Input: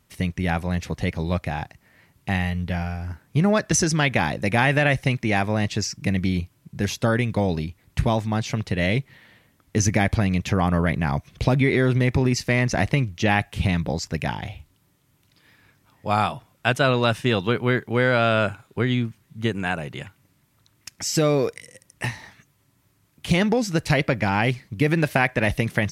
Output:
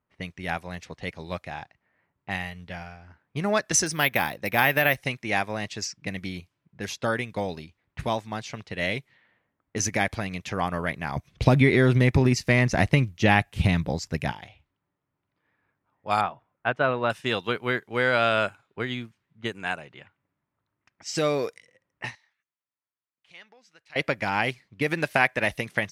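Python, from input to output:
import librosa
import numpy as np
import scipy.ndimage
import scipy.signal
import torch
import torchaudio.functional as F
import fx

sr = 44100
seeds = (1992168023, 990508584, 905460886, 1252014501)

y = fx.resample_bad(x, sr, factor=3, down='filtered', up='hold', at=(3.86, 4.97))
y = fx.low_shelf(y, sr, hz=270.0, db=11.5, at=(11.16, 14.32))
y = fx.lowpass(y, sr, hz=1700.0, slope=12, at=(16.21, 17.1))
y = fx.pre_emphasis(y, sr, coefficient=0.97, at=(22.15, 23.96))
y = fx.env_lowpass(y, sr, base_hz=1300.0, full_db=-19.5)
y = fx.low_shelf(y, sr, hz=310.0, db=-11.5)
y = fx.upward_expand(y, sr, threshold_db=-40.0, expansion=1.5)
y = y * librosa.db_to_amplitude(2.5)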